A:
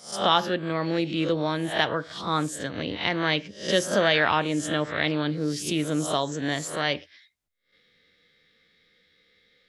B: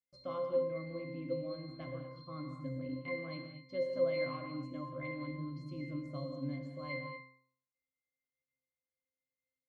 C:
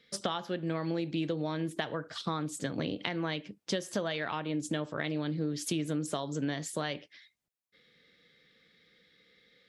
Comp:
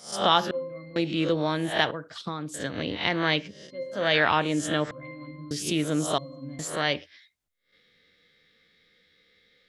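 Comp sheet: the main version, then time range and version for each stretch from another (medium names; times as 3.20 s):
A
0.51–0.96 s: from B
1.91–2.54 s: from C
3.59–4.03 s: from B, crossfade 0.24 s
4.91–5.51 s: from B
6.18–6.59 s: from B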